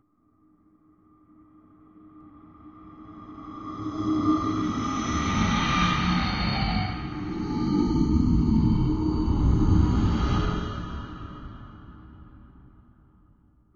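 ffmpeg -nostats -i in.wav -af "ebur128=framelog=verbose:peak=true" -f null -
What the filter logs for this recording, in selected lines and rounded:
Integrated loudness:
  I:         -25.0 LUFS
  Threshold: -37.6 LUFS
Loudness range:
  LRA:        12.1 LU
  Threshold: -46.6 LUFS
  LRA low:   -35.8 LUFS
  LRA high:  -23.7 LUFS
True peak:
  Peak:       -8.7 dBFS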